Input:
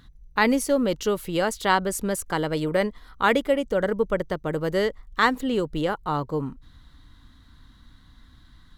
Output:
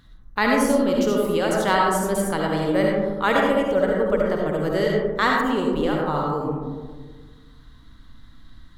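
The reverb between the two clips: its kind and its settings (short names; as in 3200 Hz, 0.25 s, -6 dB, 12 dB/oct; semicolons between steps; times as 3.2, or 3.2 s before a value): digital reverb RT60 1.5 s, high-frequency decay 0.25×, pre-delay 30 ms, DRR -2 dB; gain -1.5 dB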